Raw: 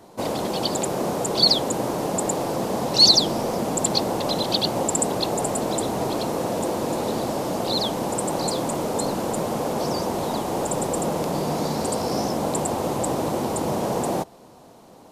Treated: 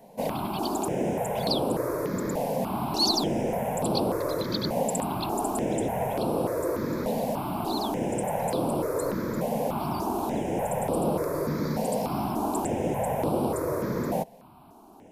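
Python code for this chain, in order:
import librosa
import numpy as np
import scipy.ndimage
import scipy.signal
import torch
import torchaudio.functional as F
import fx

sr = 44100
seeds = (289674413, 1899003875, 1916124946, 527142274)

y = fx.band_shelf(x, sr, hz=5400.0, db=-9.0, octaves=1.7)
y = fx.phaser_held(y, sr, hz=3.4, low_hz=340.0, high_hz=6600.0)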